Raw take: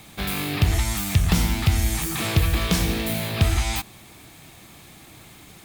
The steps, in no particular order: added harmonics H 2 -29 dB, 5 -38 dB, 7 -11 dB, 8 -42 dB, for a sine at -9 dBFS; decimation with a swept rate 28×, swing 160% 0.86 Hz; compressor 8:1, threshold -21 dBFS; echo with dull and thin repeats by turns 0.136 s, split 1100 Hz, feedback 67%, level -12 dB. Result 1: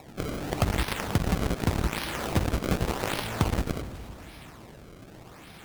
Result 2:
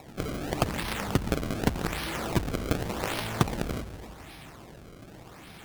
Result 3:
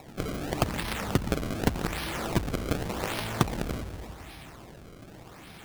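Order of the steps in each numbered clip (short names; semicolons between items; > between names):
decimation with a swept rate > echo with dull and thin repeats by turns > added harmonics > compressor; compressor > echo with dull and thin repeats by turns > decimation with a swept rate > added harmonics; echo with dull and thin repeats by turns > compressor > added harmonics > decimation with a swept rate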